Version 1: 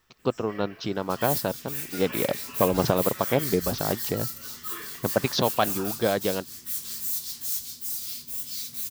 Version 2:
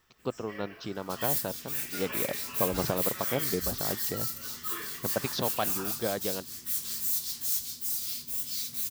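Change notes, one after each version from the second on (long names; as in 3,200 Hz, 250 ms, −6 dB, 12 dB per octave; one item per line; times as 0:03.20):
speech −7.5 dB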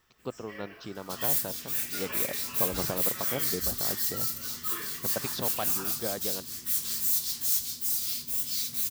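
speech −3.5 dB
second sound +3.0 dB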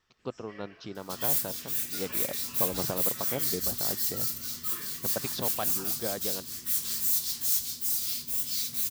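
first sound: add transistor ladder low-pass 7,200 Hz, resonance 25%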